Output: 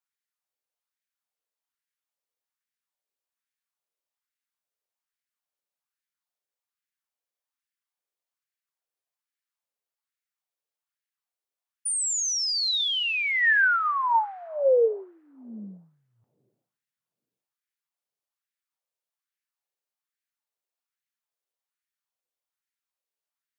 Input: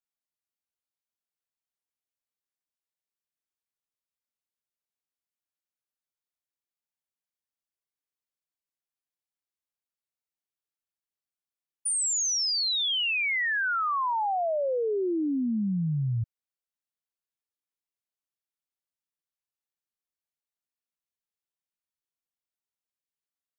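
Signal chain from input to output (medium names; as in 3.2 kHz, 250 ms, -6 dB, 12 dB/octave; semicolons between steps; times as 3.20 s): two-slope reverb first 0.28 s, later 2.7 s, from -22 dB, DRR 14 dB; LFO high-pass sine 1.2 Hz 430–1800 Hz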